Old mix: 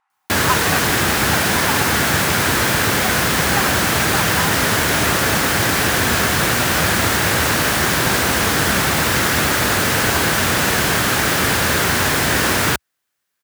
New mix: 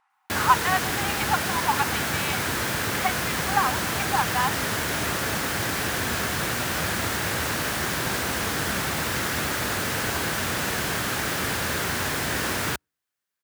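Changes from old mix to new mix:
background -10.5 dB; reverb: on

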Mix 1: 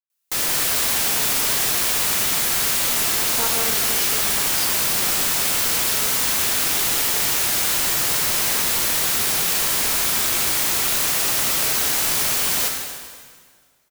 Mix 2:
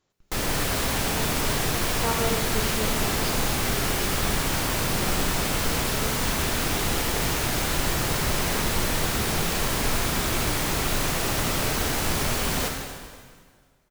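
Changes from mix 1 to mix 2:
speech: entry -1.35 s; master: add tilt EQ -3 dB/octave

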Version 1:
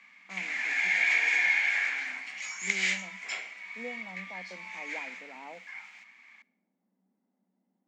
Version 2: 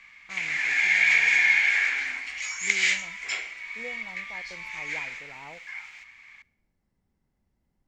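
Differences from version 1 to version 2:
speech: add tilt EQ +3 dB/octave; master: remove rippled Chebyshev high-pass 180 Hz, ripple 6 dB

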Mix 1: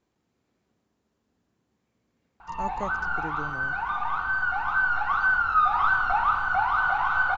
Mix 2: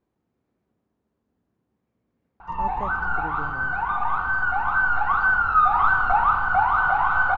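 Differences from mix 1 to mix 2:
background +7.0 dB; master: add low-pass 1.1 kHz 6 dB/octave

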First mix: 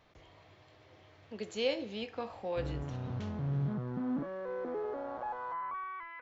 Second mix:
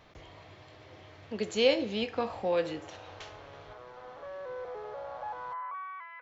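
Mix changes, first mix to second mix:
speech +7.5 dB; background: add steep high-pass 460 Hz 48 dB/octave

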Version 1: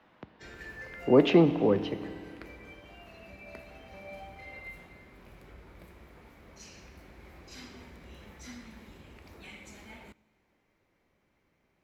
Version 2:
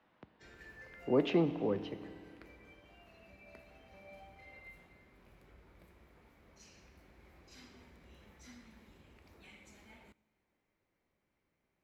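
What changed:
speech -9.0 dB; background -9.5 dB

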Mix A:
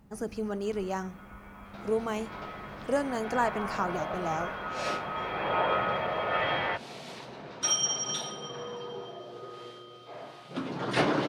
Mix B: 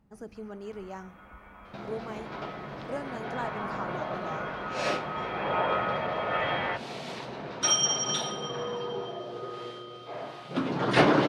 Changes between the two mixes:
speech -8.0 dB; second sound +5.5 dB; master: add treble shelf 6.3 kHz -8 dB

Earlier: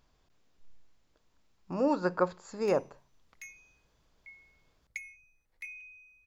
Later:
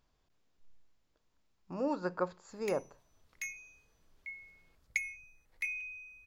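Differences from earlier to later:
speech -6.0 dB; background +7.0 dB

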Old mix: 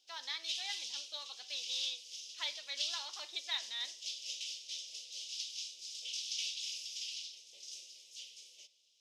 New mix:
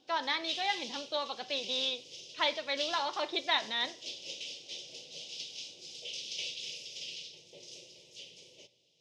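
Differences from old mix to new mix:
background -5.0 dB; master: remove differentiator

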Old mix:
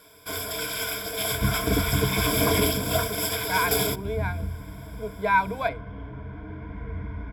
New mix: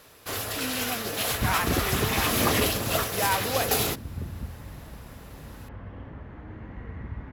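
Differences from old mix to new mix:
speech: entry -2.05 s; first sound +3.5 dB; master: remove rippled EQ curve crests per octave 1.7, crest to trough 17 dB

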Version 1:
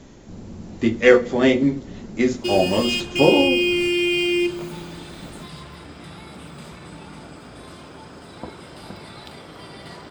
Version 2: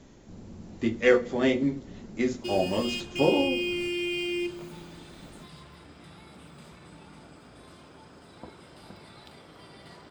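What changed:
speech -7.5 dB; background -10.0 dB

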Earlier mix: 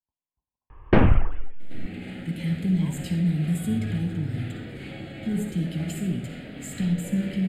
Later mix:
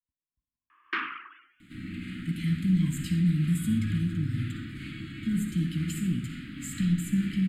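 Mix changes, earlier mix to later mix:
first sound: add high-pass 530 Hz 24 dB/octave; master: add elliptic band-stop 310–1200 Hz, stop band 60 dB

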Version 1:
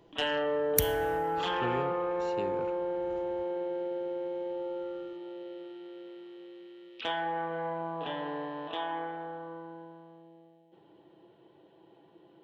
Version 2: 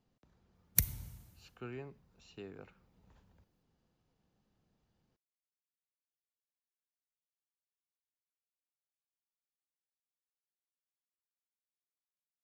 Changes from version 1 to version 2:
speech -9.0 dB; first sound: muted; reverb: off

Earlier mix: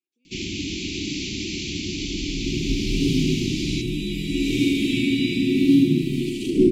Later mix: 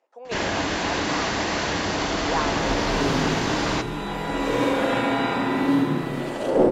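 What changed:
speech +12.0 dB; second sound -5.5 dB; master: remove Chebyshev band-stop 370–2300 Hz, order 5

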